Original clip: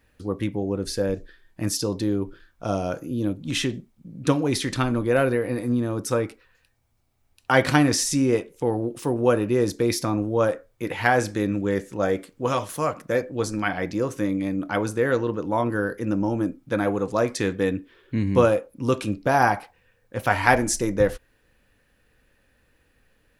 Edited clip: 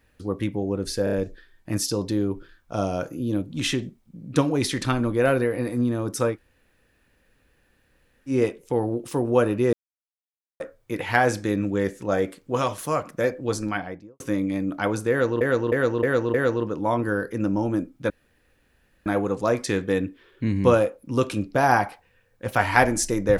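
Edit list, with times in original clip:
1.04 s: stutter 0.03 s, 4 plays
6.25–8.22 s: room tone, crossfade 0.10 s
9.64–10.51 s: mute
13.49–14.11 s: studio fade out
15.01–15.32 s: loop, 5 plays
16.77 s: insert room tone 0.96 s

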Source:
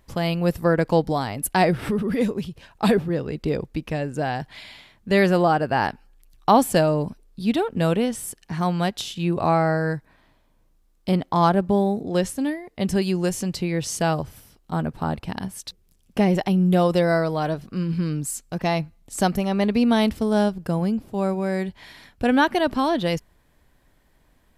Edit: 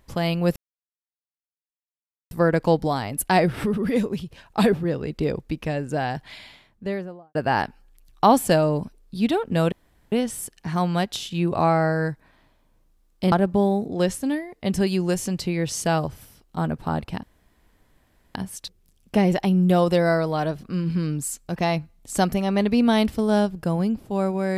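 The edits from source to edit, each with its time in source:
0.56 s: insert silence 1.75 s
4.53–5.60 s: studio fade out
7.97 s: insert room tone 0.40 s
11.17–11.47 s: delete
15.38 s: insert room tone 1.12 s

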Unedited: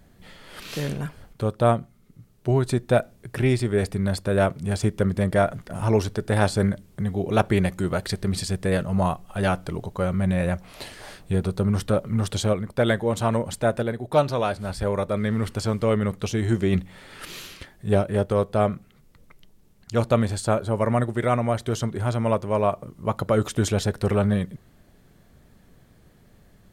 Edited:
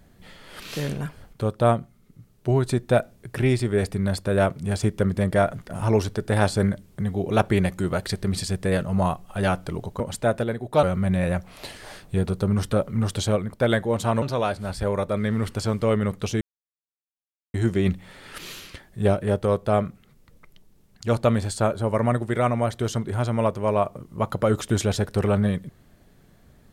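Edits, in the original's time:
13.39–14.22 s: move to 10.00 s
16.41 s: insert silence 1.13 s

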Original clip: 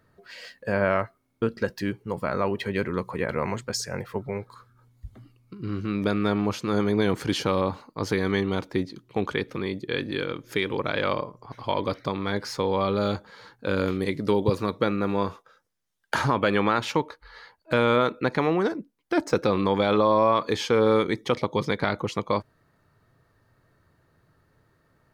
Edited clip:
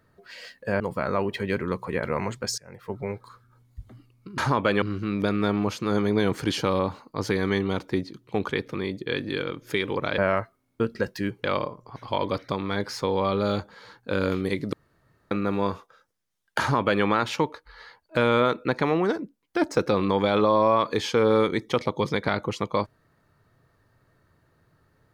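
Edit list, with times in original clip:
0.80–2.06 s: move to 11.00 s
3.84–4.23 s: fade in quadratic, from -18.5 dB
14.29–14.87 s: room tone
16.16–16.60 s: copy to 5.64 s

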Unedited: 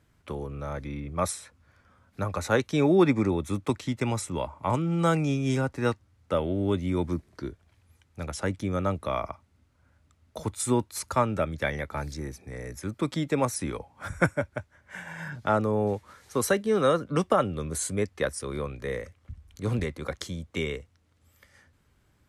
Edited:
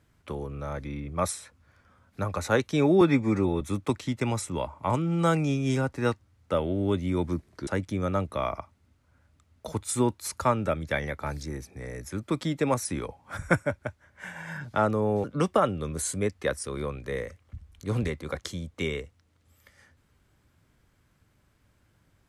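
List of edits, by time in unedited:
3.01–3.41 s: stretch 1.5×
7.47–8.38 s: delete
15.95–17.00 s: delete

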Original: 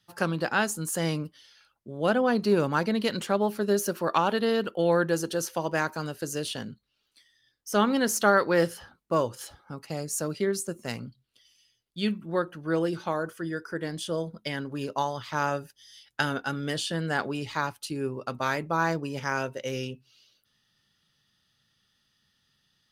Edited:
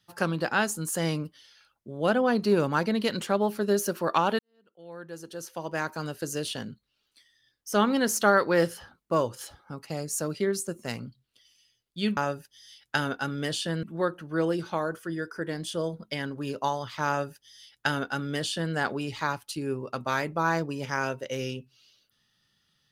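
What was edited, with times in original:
4.39–6.10 s: fade in quadratic
15.42–17.08 s: copy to 12.17 s

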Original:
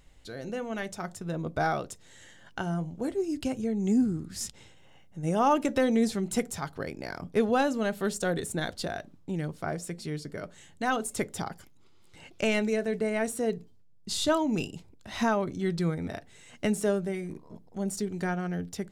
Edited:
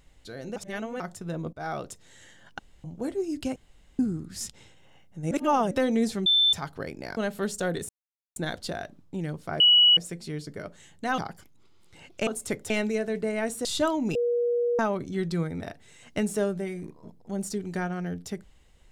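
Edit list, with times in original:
0.56–1.00 s: reverse
1.53–1.84 s: fade in linear, from -22 dB
2.59–2.84 s: room tone
3.56–3.99 s: room tone
5.31–5.71 s: reverse
6.26–6.53 s: bleep 3.54 kHz -17.5 dBFS
7.17–7.79 s: delete
8.51 s: insert silence 0.47 s
9.75 s: add tone 2.93 kHz -14 dBFS 0.37 s
10.96–11.39 s: move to 12.48 s
13.43–14.12 s: delete
14.62–15.26 s: bleep 479 Hz -22 dBFS

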